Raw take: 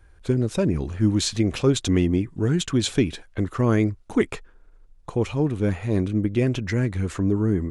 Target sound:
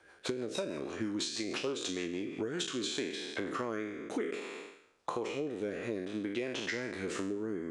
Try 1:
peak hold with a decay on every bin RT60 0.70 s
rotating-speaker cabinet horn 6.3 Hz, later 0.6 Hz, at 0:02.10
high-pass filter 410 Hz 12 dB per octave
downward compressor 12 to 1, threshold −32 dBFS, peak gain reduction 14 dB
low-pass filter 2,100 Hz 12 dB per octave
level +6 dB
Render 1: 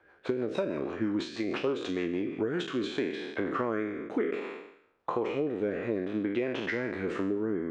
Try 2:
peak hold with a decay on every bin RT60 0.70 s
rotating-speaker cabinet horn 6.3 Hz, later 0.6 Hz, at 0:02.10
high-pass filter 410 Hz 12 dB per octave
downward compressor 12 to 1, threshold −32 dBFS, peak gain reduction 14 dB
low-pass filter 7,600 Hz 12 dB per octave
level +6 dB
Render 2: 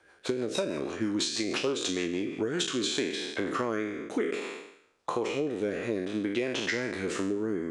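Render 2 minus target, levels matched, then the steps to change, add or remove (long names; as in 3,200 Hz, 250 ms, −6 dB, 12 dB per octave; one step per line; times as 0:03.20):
downward compressor: peak gain reduction −6 dB
change: downward compressor 12 to 1, threshold −38.5 dBFS, peak gain reduction 20 dB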